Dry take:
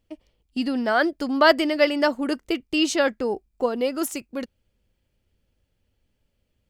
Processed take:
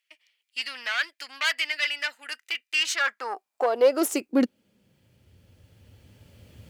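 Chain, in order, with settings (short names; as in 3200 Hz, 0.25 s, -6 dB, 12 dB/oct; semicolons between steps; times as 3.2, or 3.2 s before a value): recorder AGC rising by 7.6 dB/s; 1.72–2.81 notch comb 1100 Hz; tube stage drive 17 dB, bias 0.35; high-pass sweep 2100 Hz -> 95 Hz, 2.71–5.27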